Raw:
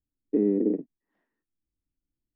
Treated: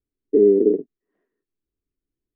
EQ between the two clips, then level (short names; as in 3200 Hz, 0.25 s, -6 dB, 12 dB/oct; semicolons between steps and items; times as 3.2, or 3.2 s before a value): Butterworth band-stop 870 Hz, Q 6.1; air absorption 220 m; bell 410 Hz +14.5 dB 0.44 oct; 0.0 dB